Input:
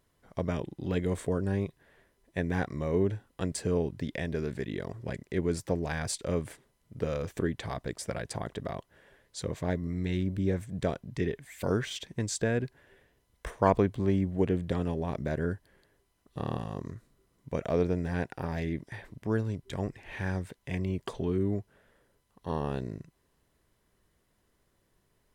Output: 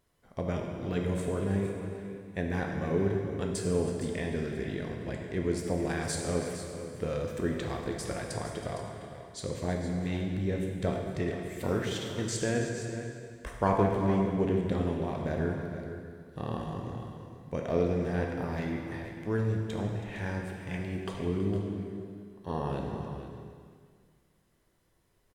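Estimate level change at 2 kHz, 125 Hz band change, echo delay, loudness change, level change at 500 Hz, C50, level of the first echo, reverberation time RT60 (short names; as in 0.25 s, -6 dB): +0.5 dB, 0.0 dB, 0.324 s, 0.0 dB, +0.5 dB, 2.0 dB, -16.0 dB, 1.9 s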